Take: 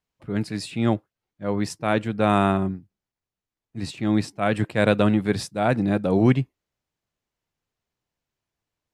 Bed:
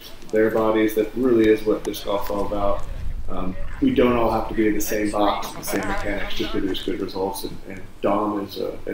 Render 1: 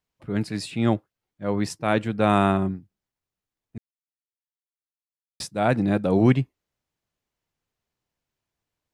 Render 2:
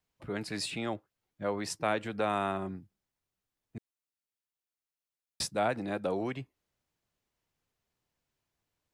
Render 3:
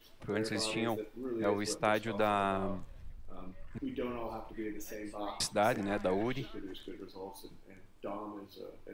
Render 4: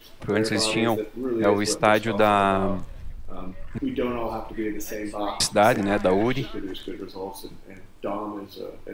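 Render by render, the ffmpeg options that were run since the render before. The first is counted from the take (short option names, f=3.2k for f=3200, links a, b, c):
-filter_complex "[0:a]asplit=3[a][b][c];[a]atrim=end=3.78,asetpts=PTS-STARTPTS,afade=t=out:st=3.776:d=0.004:c=hsin[d];[b]atrim=start=3.78:end=5.4,asetpts=PTS-STARTPTS,volume=0[e];[c]atrim=start=5.4,asetpts=PTS-STARTPTS,afade=t=in:d=0.004:c=hsin[f];[d][e][f]concat=n=3:v=0:a=1"
-filter_complex "[0:a]acompressor=threshold=-24dB:ratio=6,acrossover=split=360|1300|4300[a][b][c][d];[a]alimiter=level_in=11dB:limit=-24dB:level=0:latency=1:release=179,volume=-11dB[e];[e][b][c][d]amix=inputs=4:normalize=0"
-filter_complex "[1:a]volume=-20.5dB[a];[0:a][a]amix=inputs=2:normalize=0"
-af "volume=11.5dB"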